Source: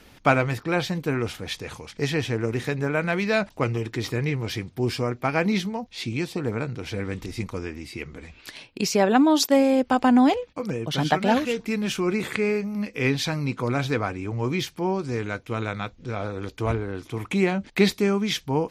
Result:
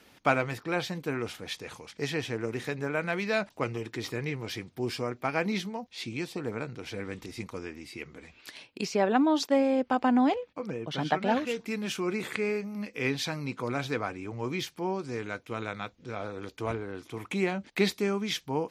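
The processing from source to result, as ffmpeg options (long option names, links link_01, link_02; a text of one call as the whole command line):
ffmpeg -i in.wav -filter_complex "[0:a]asettb=1/sr,asplit=3[link_01][link_02][link_03];[link_01]atrim=end=8.854[link_04];[link_02]atrim=start=8.85:end=11.47,asetpts=PTS-STARTPTS,afade=type=in:duration=0.004:curve=qsin,afade=type=out:start_time=2.616:duration=0.004:curve=qsin,aemphasis=mode=reproduction:type=50fm[link_05];[link_03]atrim=start=11.466[link_06];[link_04][link_05]acrossfade=duration=0.004:curve1=hsin:curve2=qsin[link_07];[link_07][link_06]acrossfade=duration=0.004:curve1=qsin:curve2=hsin,highpass=frequency=200:poles=1,volume=-5dB" out.wav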